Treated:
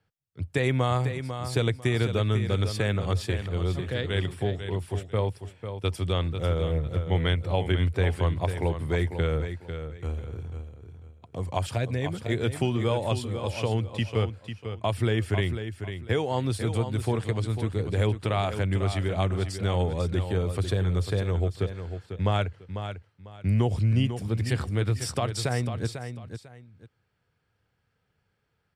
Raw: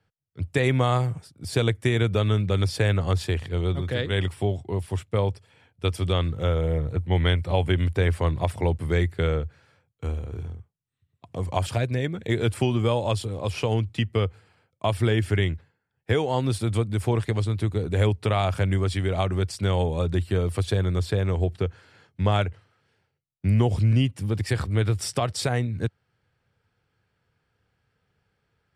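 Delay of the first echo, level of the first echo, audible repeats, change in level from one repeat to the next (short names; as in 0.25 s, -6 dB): 0.497 s, -9.0 dB, 2, -12.0 dB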